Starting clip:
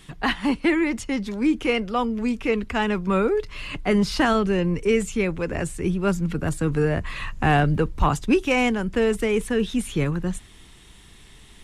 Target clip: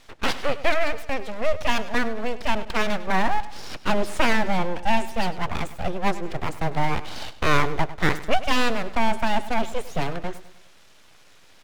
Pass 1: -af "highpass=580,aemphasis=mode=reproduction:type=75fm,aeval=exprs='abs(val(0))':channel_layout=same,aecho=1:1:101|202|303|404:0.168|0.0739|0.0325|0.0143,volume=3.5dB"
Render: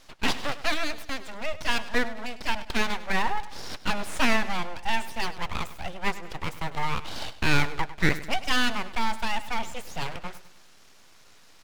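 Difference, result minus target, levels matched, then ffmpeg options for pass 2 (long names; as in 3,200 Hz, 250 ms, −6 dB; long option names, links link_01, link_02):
500 Hz band −5.0 dB
-af "highpass=260,aemphasis=mode=reproduction:type=75fm,aeval=exprs='abs(val(0))':channel_layout=same,aecho=1:1:101|202|303|404:0.168|0.0739|0.0325|0.0143,volume=3.5dB"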